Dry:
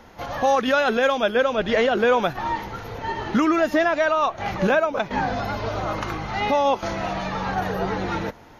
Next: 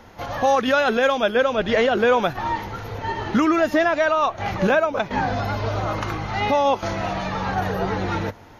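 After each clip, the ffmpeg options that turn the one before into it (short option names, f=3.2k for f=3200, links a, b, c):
-af "equalizer=f=99:t=o:w=0.26:g=7,volume=1dB"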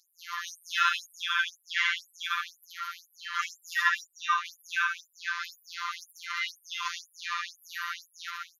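-af "aecho=1:1:75.8|134.1|279.9:0.891|0.501|0.398,afftfilt=real='hypot(re,im)*cos(PI*b)':imag='0':win_size=1024:overlap=0.75,afftfilt=real='re*gte(b*sr/1024,920*pow(7700/920,0.5+0.5*sin(2*PI*2*pts/sr)))':imag='im*gte(b*sr/1024,920*pow(7700/920,0.5+0.5*sin(2*PI*2*pts/sr)))':win_size=1024:overlap=0.75"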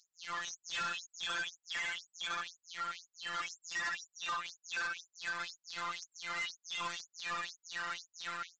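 -af "acompressor=threshold=-30dB:ratio=2.5,aresample=16000,asoftclip=type=hard:threshold=-34dB,aresample=44100"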